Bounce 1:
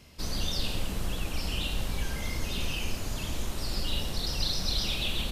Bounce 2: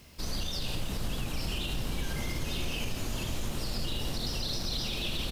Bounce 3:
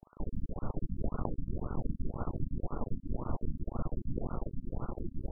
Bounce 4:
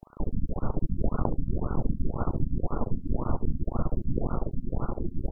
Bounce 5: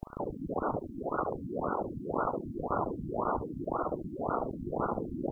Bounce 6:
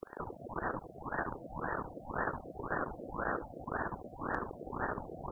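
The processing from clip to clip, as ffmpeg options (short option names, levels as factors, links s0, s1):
-filter_complex "[0:a]alimiter=limit=0.0631:level=0:latency=1,acrusher=bits=9:mix=0:aa=0.000001,asplit=8[s0][s1][s2][s3][s4][s5][s6][s7];[s1]adelay=401,afreqshift=110,volume=0.251[s8];[s2]adelay=802,afreqshift=220,volume=0.158[s9];[s3]adelay=1203,afreqshift=330,volume=0.1[s10];[s4]adelay=1604,afreqshift=440,volume=0.0631[s11];[s5]adelay=2005,afreqshift=550,volume=0.0394[s12];[s6]adelay=2406,afreqshift=660,volume=0.0248[s13];[s7]adelay=2807,afreqshift=770,volume=0.0157[s14];[s0][s8][s9][s10][s11][s12][s13][s14]amix=inputs=8:normalize=0"
-filter_complex "[0:a]equalizer=f=1300:w=1:g=4,acrossover=split=1200[s0][s1];[s0]acrusher=bits=5:dc=4:mix=0:aa=0.000001[s2];[s2][s1]amix=inputs=2:normalize=0,afftfilt=real='re*lt(b*sr/1024,290*pow(1500/290,0.5+0.5*sin(2*PI*1.9*pts/sr)))':imag='im*lt(b*sr/1024,290*pow(1500/290,0.5+0.5*sin(2*PI*1.9*pts/sr)))':win_size=1024:overlap=0.75,volume=1.33"
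-af "aecho=1:1:72:0.126,volume=2.37"
-af "afftfilt=real='re*lt(hypot(re,im),0.1)':imag='im*lt(hypot(re,im),0.1)':win_size=1024:overlap=0.75,volume=2.24"
-af "equalizer=f=270:t=o:w=2.1:g=-11,aeval=exprs='val(0)*sin(2*PI*410*n/s)':c=same,asoftclip=type=hard:threshold=0.0794,volume=1.33"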